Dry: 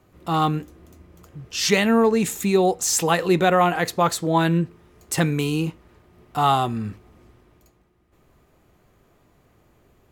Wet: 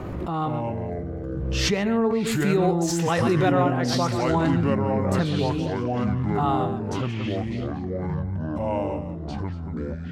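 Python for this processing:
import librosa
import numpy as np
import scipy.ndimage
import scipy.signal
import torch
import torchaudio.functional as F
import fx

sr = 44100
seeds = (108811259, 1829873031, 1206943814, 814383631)

y = fx.lowpass(x, sr, hz=fx.steps((0.0, 1100.0), (2.27, 2900.0), (3.52, 1300.0)), slope=6)
y = y + 10.0 ** (-10.5 / 20.0) * np.pad(y, (int(132 * sr / 1000.0), 0))[:len(y)]
y = fx.echo_pitch(y, sr, ms=84, semitones=-5, count=3, db_per_echo=-3.0)
y = fx.pre_swell(y, sr, db_per_s=23.0)
y = y * 10.0 ** (-5.0 / 20.0)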